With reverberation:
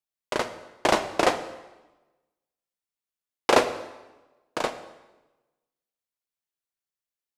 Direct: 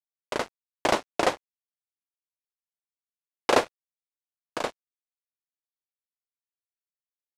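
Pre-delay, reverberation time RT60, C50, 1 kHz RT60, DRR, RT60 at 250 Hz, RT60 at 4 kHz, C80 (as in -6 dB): 5 ms, 1.1 s, 11.5 dB, 1.1 s, 9.0 dB, 1.2 s, 0.95 s, 14.0 dB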